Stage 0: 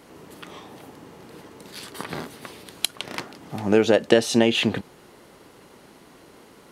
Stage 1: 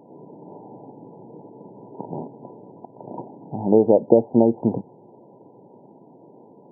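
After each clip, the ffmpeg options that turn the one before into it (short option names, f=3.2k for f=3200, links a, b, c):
-af "afftfilt=real='re*between(b*sr/4096,100,1000)':imag='im*between(b*sr/4096,100,1000)':win_size=4096:overlap=0.75,volume=2.5dB"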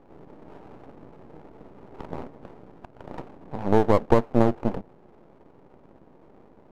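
-af "adynamicsmooth=sensitivity=6:basefreq=790,aeval=exprs='max(val(0),0)':c=same"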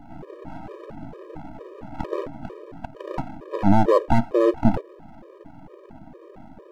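-af "alimiter=level_in=11.5dB:limit=-1dB:release=50:level=0:latency=1,afftfilt=real='re*gt(sin(2*PI*2.2*pts/sr)*(1-2*mod(floor(b*sr/1024/320),2)),0)':imag='im*gt(sin(2*PI*2.2*pts/sr)*(1-2*mod(floor(b*sr/1024/320),2)),0)':win_size=1024:overlap=0.75"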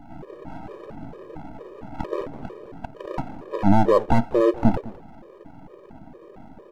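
-af "aecho=1:1:206:0.112"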